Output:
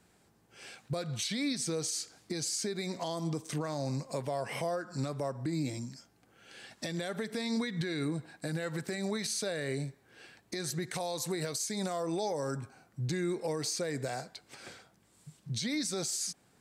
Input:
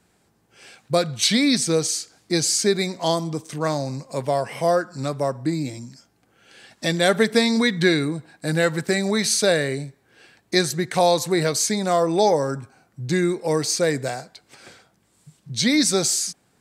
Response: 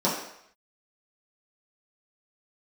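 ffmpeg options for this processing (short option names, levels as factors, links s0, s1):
-filter_complex "[0:a]asettb=1/sr,asplit=3[s0][s1][s2];[s0]atrim=end=10.824[s3];[s1]atrim=start=10.82:end=12.57,asetpts=PTS-STARTPTS,afade=t=in:d=0.004:c=qsin,afade=t=out:st=1.746:d=0.004:c=qsin,equalizer=f=11000:w=0.35:g=5.5[s4];[s2]atrim=start=12.566[s5];[s3][s4]acrossfade=d=0.004:c1=hsin:c2=qsin[s6];[s6][s5]acrossfade=d=0.004:c1=qsin:c2=hsin,acompressor=threshold=0.0891:ratio=6,alimiter=limit=0.0794:level=0:latency=1:release=142,volume=0.708"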